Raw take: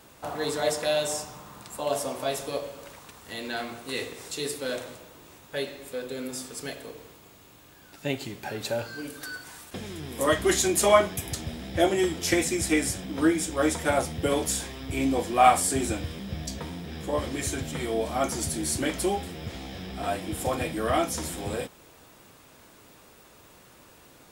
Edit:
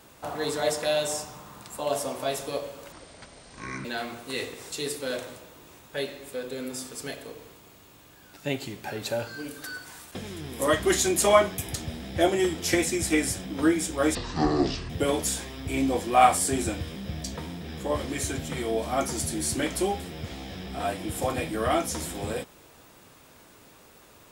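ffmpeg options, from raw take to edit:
ffmpeg -i in.wav -filter_complex "[0:a]asplit=5[link_01][link_02][link_03][link_04][link_05];[link_01]atrim=end=2.924[link_06];[link_02]atrim=start=2.92:end=3.44,asetpts=PTS-STARTPTS,asetrate=24696,aresample=44100[link_07];[link_03]atrim=start=3.436:end=13.744[link_08];[link_04]atrim=start=13.74:end=14.13,asetpts=PTS-STARTPTS,asetrate=22932,aresample=44100[link_09];[link_05]atrim=start=14.126[link_10];[link_06][link_07]acrossfade=duration=0.004:curve1=hsin:curve2=hsin[link_11];[link_11][link_08]acrossfade=duration=0.004:curve1=hsin:curve2=hsin[link_12];[link_12][link_09]acrossfade=duration=0.004:curve1=hsin:curve2=hsin[link_13];[link_13][link_10]acrossfade=duration=0.004:curve1=hsin:curve2=hsin" out.wav

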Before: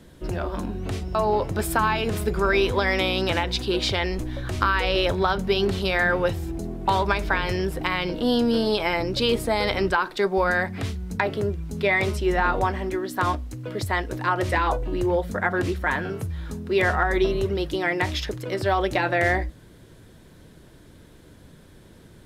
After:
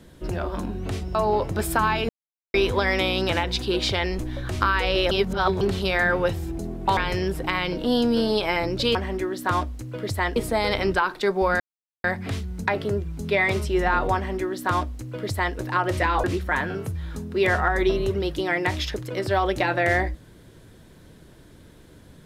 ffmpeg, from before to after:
ffmpeg -i in.wav -filter_complex "[0:a]asplit=10[link_01][link_02][link_03][link_04][link_05][link_06][link_07][link_08][link_09][link_10];[link_01]atrim=end=2.09,asetpts=PTS-STARTPTS,afade=type=out:start_time=2.086:duration=0.004:curve=hsin[link_11];[link_02]atrim=start=2.09:end=2.54,asetpts=PTS-STARTPTS,volume=0[link_12];[link_03]atrim=start=2.54:end=5.112,asetpts=PTS-STARTPTS,afade=type=in:duration=0.004:curve=hsin[link_13];[link_04]atrim=start=5.108:end=5.612,asetpts=PTS-STARTPTS,areverse[link_14];[link_05]atrim=start=5.608:end=6.972[link_15];[link_06]atrim=start=7.338:end=9.322[link_16];[link_07]atrim=start=12.668:end=14.082[link_17];[link_08]atrim=start=9.318:end=10.56,asetpts=PTS-STARTPTS,afade=type=out:start_time=1.238:duration=0.004:curve=hsin,apad=pad_dur=0.44[link_18];[link_09]atrim=start=10.56:end=14.762,asetpts=PTS-STARTPTS,afade=type=in:duration=0.004:curve=hsin[link_19];[link_10]atrim=start=15.588[link_20];[link_11][link_12][link_13]concat=n=3:v=0:a=1[link_21];[link_21][link_14]acrossfade=duration=0.004:curve1=hsin:curve2=hsin[link_22];[link_22][link_15]acrossfade=duration=0.004:curve1=hsin:curve2=hsin[link_23];[link_23][link_16]acrossfade=duration=0.004:curve1=hsin:curve2=hsin[link_24];[link_24][link_17]acrossfade=duration=0.004:curve1=hsin:curve2=hsin[link_25];[link_18][link_19]concat=n=2:v=0:a=1[link_26];[link_25][link_26]acrossfade=duration=0.004:curve1=hsin:curve2=hsin[link_27];[link_27][link_20]acrossfade=duration=0.004:curve1=hsin:curve2=hsin" out.wav

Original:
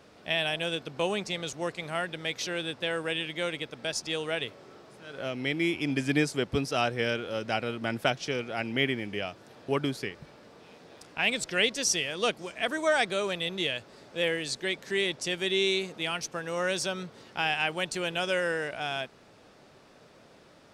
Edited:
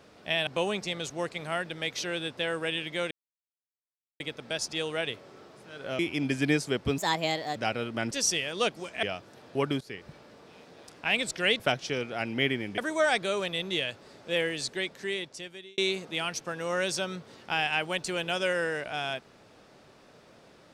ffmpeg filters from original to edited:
ffmpeg -i in.wav -filter_complex "[0:a]asplit=12[link_01][link_02][link_03][link_04][link_05][link_06][link_07][link_08][link_09][link_10][link_11][link_12];[link_01]atrim=end=0.472[link_13];[link_02]atrim=start=0.898:end=3.54,asetpts=PTS-STARTPTS,afade=type=out:start_time=2.638:duration=0.004:curve=hsin,apad=pad_dur=1.09[link_14];[link_03]atrim=start=3.54:end=5.332,asetpts=PTS-STARTPTS,afade=type=in:duration=0.004:curve=hsin[link_15];[link_04]atrim=start=5.658:end=6.654[link_16];[link_05]atrim=start=6.65:end=7.43,asetpts=PTS-STARTPTS,asetrate=59535,aresample=44100[link_17];[link_06]atrim=start=7.426:end=7.982[link_18];[link_07]atrim=start=11.728:end=12.652[link_19];[link_08]atrim=start=9.158:end=9.94,asetpts=PTS-STARTPTS,afade=type=out:start_time=0.778:duration=0.004:curve=hsin:silence=0.141254[link_20];[link_09]atrim=start=9.94:end=11.732,asetpts=PTS-STARTPTS,afade=type=in:duration=0.26:silence=0.141254[link_21];[link_10]atrim=start=7.978:end=9.162[link_22];[link_11]atrim=start=12.648:end=15.65,asetpts=PTS-STARTPTS,afade=type=out:start_time=1.892:duration=1.11[link_23];[link_12]atrim=start=15.65,asetpts=PTS-STARTPTS,afade=type=in:duration=0.004:curve=hsin[link_24];[link_14][link_15]concat=n=2:v=0:a=1[link_25];[link_13][link_25]acrossfade=duration=0.004:curve1=hsin:curve2=hsin[link_26];[link_26][link_16]acrossfade=duration=0.004:curve1=hsin:curve2=hsin[link_27];[link_27][link_17]acrossfade=duration=0.004:curve1=hsin:curve2=hsin[link_28];[link_28][link_18]acrossfade=duration=0.004:curve1=hsin:curve2=hsin[link_29];[link_29][link_19]acrossfade=duration=0.004:curve1=hsin:curve2=hsin[link_30];[link_20][link_21]concat=n=2:v=0:a=1[link_31];[link_30][link_31]acrossfade=duration=0.004:curve1=hsin:curve2=hsin[link_32];[link_32][link_22]acrossfade=duration=0.004:curve1=hsin:curve2=hsin[link_33];[link_23][link_24]concat=n=2:v=0:a=1[link_34];[link_33][link_34]acrossfade=duration=0.004:curve1=hsin:curve2=hsin" out.wav

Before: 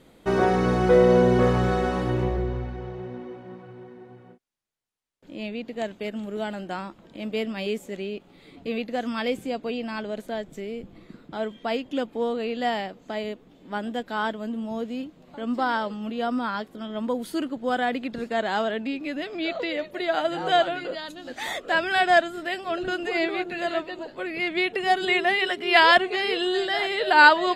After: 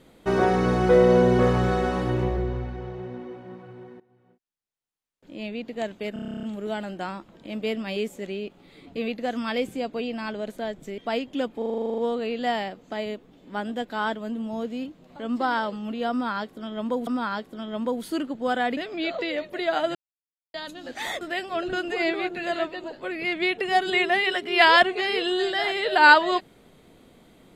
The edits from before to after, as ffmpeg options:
ffmpeg -i in.wav -filter_complex "[0:a]asplit=28[link_01][link_02][link_03][link_04][link_05][link_06][link_07][link_08][link_09][link_10][link_11][link_12][link_13][link_14][link_15][link_16][link_17][link_18][link_19][link_20][link_21][link_22][link_23][link_24][link_25][link_26][link_27][link_28];[link_01]atrim=end=4,asetpts=PTS-STARTPTS,afade=type=out:start_time=3.996:duration=0.004:curve=hsin:silence=0.1[link_29];[link_02]atrim=start=4:end=6.162,asetpts=PTS-STARTPTS,afade=type=in:duration=1.59:silence=0.1[link_30];[link_03]atrim=start=6.128:end=6.162[link_31];[link_04]atrim=start=6.128:end=6.162[link_32];[link_05]atrim=start=6.128:end=6.162[link_33];[link_06]atrim=start=6.128:end=6.162[link_34];[link_07]atrim=start=6.128:end=6.162[link_35];[link_08]atrim=start=6.128:end=6.162[link_36];[link_09]atrim=start=6.128:end=6.162[link_37];[link_10]atrim=start=6.128:end=6.162[link_38];[link_11]atrim=start=6.128:end=6.162[link_39];[link_12]atrim=start=6.128:end=10.682[link_40];[link_13]atrim=start=11.558:end=12.202[link_41];[link_14]atrim=start=12.158:end=12.202[link_42];[link_15]atrim=start=12.158:end=12.202[link_43];[link_16]atrim=start=12.158:end=12.202[link_44];[link_17]atrim=start=12.158:end=12.202[link_45];[link_18]atrim=start=12.158:end=12.202[link_46];[link_19]atrim=start=12.158:end=12.202[link_47];[link_20]atrim=start=12.158:end=12.202[link_48];[link_21]atrim=start=12.158:end=12.202[link_49];[link_22]atrim=start=12.158:end=12.202[link_50];[link_23]atrim=start=12.158:end=17.252[link_51];[link_24]atrim=start=16.288:end=17.992[link_52];[link_25]atrim=start=19.178:end=20.36,asetpts=PTS-STARTPTS,afade=type=out:start_time=1.178:duration=0.004:curve=hsin[link_53];[link_26]atrim=start=20.36:end=20.95,asetpts=PTS-STARTPTS,volume=0[link_54];[link_27]atrim=start=20.95:end=21.622,asetpts=PTS-STARTPTS,afade=type=in:duration=0.004:curve=hsin[link_55];[link_28]atrim=start=22.358[link_56];[link_29][link_30]concat=n=2:v=0:a=1[link_57];[link_57][link_31]acrossfade=duration=0.004:curve1=hsin:curve2=hsin[link_58];[link_58][link_32]acrossfade=duration=0.004:curve1=hsin:curve2=hsin[link_59];[link_59][link_33]acrossfade=duration=0.004:curve1=hsin:curve2=hsin[link_60];[link_60][link_34]acrossfade=duration=0.004:curve1=hsin:curve2=hsin[link_61];[link_61][link_35]acrossfade=duration=0.004:curve1=hsin:curve2=hsin[link_62];[link_62][link_36]acrossfade=duration=0.004:curve1=hsin:curve2=hsin[link_63];[link_63][link_37]acrossfade=duration=0.004:curve1=hsin:curve2=hsin[link_64];[link_64][link_38]acrossfade=duration=0.004:curve1=hsin:curve2=hsin[link_65];[link_65][link_39]acrossfade=duration=0.004:curve1=hsin:curve2=hsin[link_66];[link_66][link_40]acrossfade=duration=0.004:curve1=hsin:curve2=hsin[link_67];[link_67][link_41]acrossfade=duration=0.004:curve1=hsin:curve2=hsin[link_68];[link_68][link_42]acrossfade=duration=0.004:curve1=hsin:curve2=hsin[link_69];[link_69][link_43]acrossfade=duration=0.004:curve1=hsin:curve2=hsin[link_70];[link_70][link_44]acrossfade=duration=0.004:curve1=hsin:curve2=hsin[link_71];[link_71][link_45]acrossfade=duration=0.004:curve1=hsin:curve2=hsin[link_72];[link_72][link_46]acrossfade=duration=0.004:curve1=hsin:curve2=hsin[link_73];[link_73][link_47]acrossfade=duration=0.004:curve1=hsin:curve2=hsin[link_74];[link_74][link_48]acrossfade=duration=0.004:curve1=hsin:curve2=hsin[link_75];[link_75][link_49]acrossfade=duration=0.004:curve1=hsin:curve2=hsin[link_76];[link_76][link_50]acrossfade=duration=0.004:curve1=hsin:curve2=hsin[link_77];[link_77][link_51]acrossfade=duration=0.004:curve1=hsin:curve2=hsin[link_78];[link_78][link_52]acrossfade=duration=0.004:curve1=hsin:curve2=hsin[link_79];[link_53][link_54][link_55]concat=n=3:v=0:a=1[link_80];[link_79][link_80]acrossfade=duration=0.004:curve1=hsin:curve2=hsin[link_81];[link_81][link_56]acrossfade=duration=0.004:curve1=hsin:curve2=hsin" out.wav

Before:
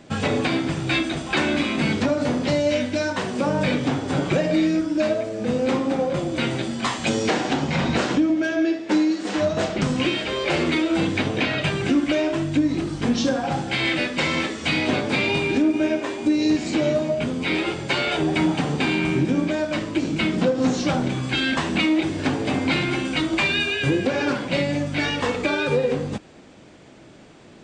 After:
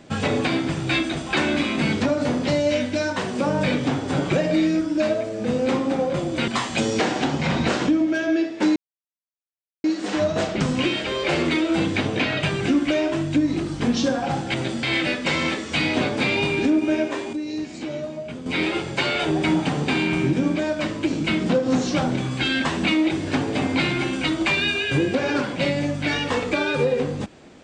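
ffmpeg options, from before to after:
ffmpeg -i in.wav -filter_complex "[0:a]asplit=7[link_01][link_02][link_03][link_04][link_05][link_06][link_07];[link_01]atrim=end=6.482[link_08];[link_02]atrim=start=6.768:end=9.05,asetpts=PTS-STARTPTS,afade=type=out:start_time=2.278:duration=0.004:curve=hsin,apad=pad_dur=1.08[link_09];[link_03]atrim=start=9.05:end=13.752,asetpts=PTS-STARTPTS,afade=type=in:duration=0.004:curve=hsin[link_10];[link_04]atrim=start=6.478:end=6.772[link_11];[link_05]atrim=start=13.748:end=16.252[link_12];[link_06]atrim=start=16.248:end=17.382,asetpts=PTS-STARTPTS,volume=-9dB[link_13];[link_07]atrim=start=17.378[link_14];[link_09][link_10]concat=n=2:v=0:a=1[link_15];[link_08][link_15]acrossfade=duration=0.004:curve1=hsin:curve2=hsin[link_16];[link_16][link_11]acrossfade=duration=0.004:curve1=hsin:curve2=hsin[link_17];[link_17][link_12]acrossfade=duration=0.004:curve1=hsin:curve2=hsin[link_18];[link_18][link_13]acrossfade=duration=0.004:curve1=hsin:curve2=hsin[link_19];[link_19][link_14]acrossfade=duration=0.004:curve1=hsin:curve2=hsin" out.wav

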